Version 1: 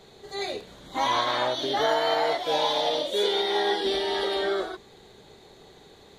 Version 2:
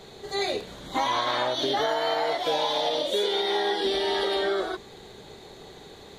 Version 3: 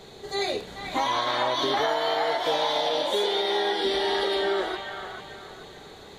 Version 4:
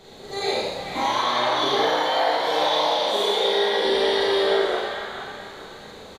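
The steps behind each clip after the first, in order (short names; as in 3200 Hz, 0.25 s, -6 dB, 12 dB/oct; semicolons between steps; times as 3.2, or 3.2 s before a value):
compressor, threshold -28 dBFS, peak gain reduction 8.5 dB; gain +5.5 dB
band-limited delay 0.437 s, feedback 37%, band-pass 1500 Hz, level -4 dB
frequency-shifting echo 83 ms, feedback 56%, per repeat +55 Hz, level -4.5 dB; Schroeder reverb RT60 0.69 s, combs from 29 ms, DRR -3 dB; gain -3 dB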